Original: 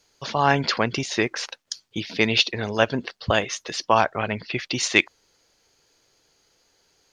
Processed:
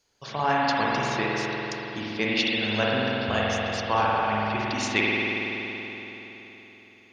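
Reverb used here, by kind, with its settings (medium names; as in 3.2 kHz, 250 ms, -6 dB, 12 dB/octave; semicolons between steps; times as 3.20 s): spring tank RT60 3.9 s, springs 47 ms, chirp 80 ms, DRR -6 dB; trim -8 dB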